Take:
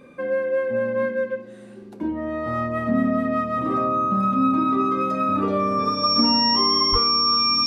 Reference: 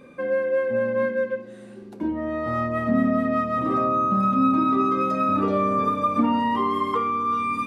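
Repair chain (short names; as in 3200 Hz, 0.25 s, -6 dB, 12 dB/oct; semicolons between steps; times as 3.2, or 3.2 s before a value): notch 5500 Hz, Q 30; 6.91–7.03 HPF 140 Hz 24 dB/oct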